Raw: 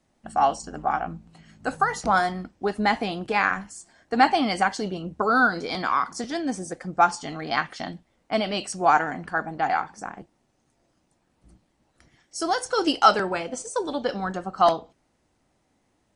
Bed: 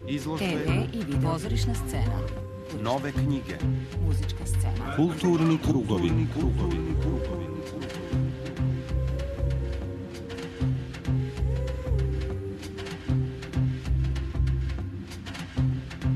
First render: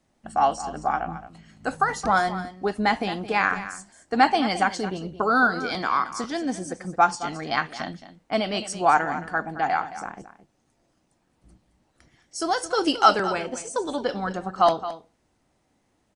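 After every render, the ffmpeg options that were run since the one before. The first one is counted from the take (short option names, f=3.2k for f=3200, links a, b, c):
-af "aecho=1:1:219:0.211"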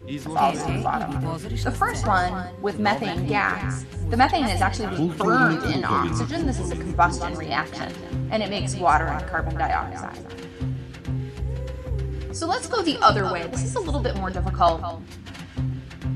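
-filter_complex "[1:a]volume=-1.5dB[a];[0:a][a]amix=inputs=2:normalize=0"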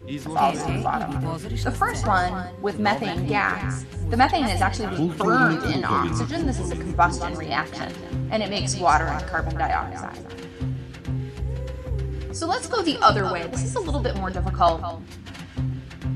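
-filter_complex "[0:a]asettb=1/sr,asplit=3[a][b][c];[a]atrim=end=8.564[d];[b]atrim=start=8.56:end=9.52,asetpts=PTS-STARTPTS,afade=t=in:d=0.004:c=qsin,afade=t=out:st=0.956:d=0.004:c=qsin,equalizer=f=5.3k:t=o:w=0.82:g=10[e];[c]atrim=start=9.516[f];[d][e]acrossfade=d=0.004:c1=hsin:c2=qsin[g];[g][f]acrossfade=d=0.004:c1=qsin:c2=hsin"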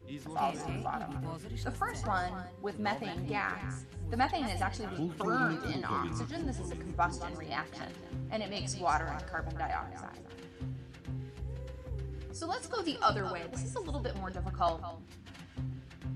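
-af "volume=-12dB"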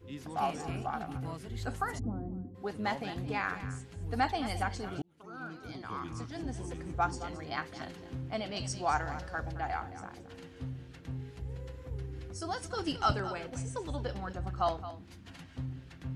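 -filter_complex "[0:a]asplit=3[a][b][c];[a]afade=t=out:st=1.98:d=0.02[d];[b]lowpass=f=280:t=q:w=3,afade=t=in:st=1.98:d=0.02,afade=t=out:st=2.54:d=0.02[e];[c]afade=t=in:st=2.54:d=0.02[f];[d][e][f]amix=inputs=3:normalize=0,asettb=1/sr,asplit=3[g][h][i];[g]atrim=end=12.294[j];[h]atrim=start=12.29:end=13.12,asetpts=PTS-STARTPTS,afade=t=in:d=0.004:c=qsin,afade=t=out:st=0.826:d=0.004:c=qsin,asubboost=boost=11:cutoff=220[k];[i]atrim=start=13.116[l];[j][k]acrossfade=d=0.004:c1=hsin:c2=qsin[m];[m][l]acrossfade=d=0.004:c1=qsin:c2=hsin,asplit=2[n][o];[n]atrim=end=5.02,asetpts=PTS-STARTPTS,afade=t=out:st=5.016:d=0.004:c=hsin[p];[o]atrim=start=5.02,asetpts=PTS-STARTPTS,afade=t=in:d=1.82[q];[p][q]concat=n=2:v=0:a=1"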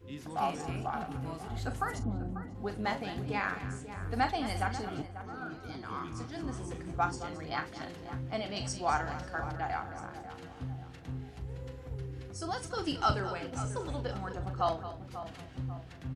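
-filter_complex "[0:a]asplit=2[a][b];[b]adelay=40,volume=-11dB[c];[a][c]amix=inputs=2:normalize=0,asplit=2[d][e];[e]adelay=542,lowpass=f=1.5k:p=1,volume=-11dB,asplit=2[f][g];[g]adelay=542,lowpass=f=1.5k:p=1,volume=0.49,asplit=2[h][i];[i]adelay=542,lowpass=f=1.5k:p=1,volume=0.49,asplit=2[j][k];[k]adelay=542,lowpass=f=1.5k:p=1,volume=0.49,asplit=2[l][m];[m]adelay=542,lowpass=f=1.5k:p=1,volume=0.49[n];[d][f][h][j][l][n]amix=inputs=6:normalize=0"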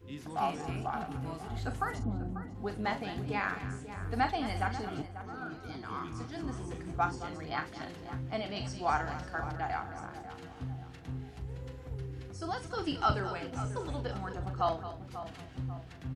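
-filter_complex "[0:a]bandreject=f=540:w=16,acrossover=split=4400[a][b];[b]acompressor=threshold=-54dB:ratio=4:attack=1:release=60[c];[a][c]amix=inputs=2:normalize=0"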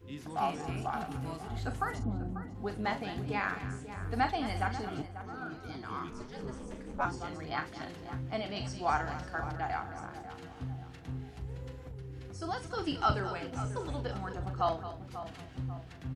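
-filter_complex "[0:a]asettb=1/sr,asplit=3[a][b][c];[a]atrim=end=0.774[d];[b]atrim=start=0.77:end=1.37,asetpts=PTS-STARTPTS,afade=t=in:d=0.004:c=qsin,afade=t=out:st=0.596:d=0.004:c=qsin,highshelf=f=3.9k:g=6[e];[c]atrim=start=1.366[f];[d][e]acrossfade=d=0.004:c1=hsin:c2=qsin[g];[g][f]acrossfade=d=0.004:c1=qsin:c2=hsin,asettb=1/sr,asplit=3[h][i][j];[h]atrim=end=6.104[k];[i]atrim=start=6.1:end=7.05,asetpts=PTS-STARTPTS,afade=t=in:d=0.004:c=qsin,afade=t=out:st=0.946:d=0.004:c=qsin,aeval=exprs='val(0)*sin(2*PI*130*n/s)':c=same[l];[j]atrim=start=7.046[m];[k][l]acrossfade=d=0.004:c1=hsin:c2=qsin[n];[n][m]acrossfade=d=0.004:c1=qsin:c2=hsin,asettb=1/sr,asplit=3[o][p][q];[o]atrim=end=11.784[r];[p]atrim=start=11.78:end=12.29,asetpts=PTS-STARTPTS,afade=t=in:d=0.004:c=qsin,afade=t=out:st=0.506:d=0.004:c=qsin,acompressor=threshold=-40dB:ratio=5:attack=3.2:release=140:knee=1:detection=peak[s];[q]atrim=start=12.286[t];[r][s]acrossfade=d=0.004:c1=hsin:c2=qsin[u];[u][t]acrossfade=d=0.004:c1=qsin:c2=hsin"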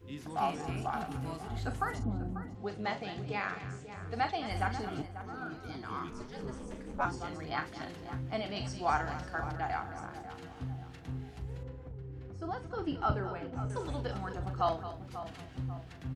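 -filter_complex "[0:a]asettb=1/sr,asplit=3[a][b][c];[a]atrim=end=2.554[d];[b]atrim=start=2.55:end=4.51,asetpts=PTS-STARTPTS,afade=t=in:d=0.004:c=qsin,afade=t=out:st=1.956:d=0.004:c=qsin,highpass=110,equalizer=f=260:t=q:w=4:g=-10,equalizer=f=960:t=q:w=4:g=-5,equalizer=f=1.6k:t=q:w=4:g=-4,lowpass=f=7.5k:w=0.5412,lowpass=f=7.5k:w=1.3066[e];[c]atrim=start=4.506[f];[d][e]acrossfade=d=0.004:c1=hsin:c2=qsin[g];[g][f]acrossfade=d=0.004:c1=qsin:c2=hsin,asettb=1/sr,asplit=3[h][i][j];[h]atrim=end=11.634[k];[i]atrim=start=11.63:end=13.7,asetpts=PTS-STARTPTS,afade=t=in:d=0.004:c=qsin,afade=t=out:st=2.066:d=0.004:c=qsin,lowpass=f=1.1k:p=1[l];[j]atrim=start=13.696[m];[k][l]acrossfade=d=0.004:c1=hsin:c2=qsin[n];[n][m]acrossfade=d=0.004:c1=qsin:c2=hsin"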